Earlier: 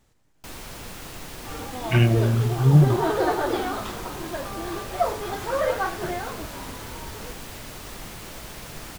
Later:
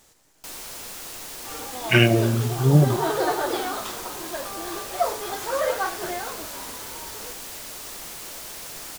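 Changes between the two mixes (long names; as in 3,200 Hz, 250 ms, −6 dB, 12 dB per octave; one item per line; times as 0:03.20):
speech +8.0 dB
first sound: send off
master: add bass and treble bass −11 dB, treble +8 dB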